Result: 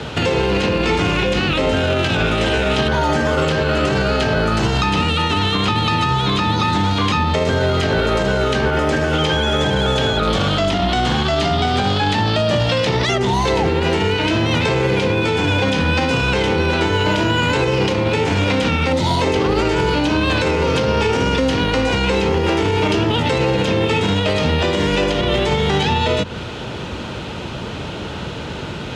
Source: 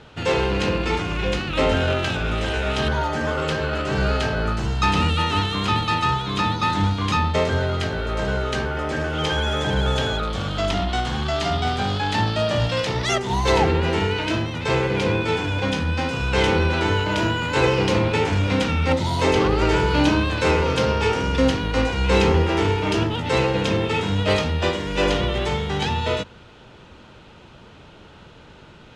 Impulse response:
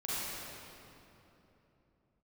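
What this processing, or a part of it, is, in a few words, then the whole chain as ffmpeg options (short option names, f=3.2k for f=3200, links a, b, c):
mastering chain: -filter_complex "[0:a]highpass=56,equalizer=f=1.3k:t=o:w=1.6:g=-3,acrossover=split=120|340|4800[a][b][c][d];[a]acompressor=threshold=-39dB:ratio=4[e];[b]acompressor=threshold=-35dB:ratio=4[f];[c]acompressor=threshold=-30dB:ratio=4[g];[d]acompressor=threshold=-51dB:ratio=4[h];[e][f][g][h]amix=inputs=4:normalize=0,acompressor=threshold=-33dB:ratio=2,asoftclip=type=hard:threshold=-20.5dB,alimiter=level_in=27dB:limit=-1dB:release=50:level=0:latency=1,volume=-7.5dB"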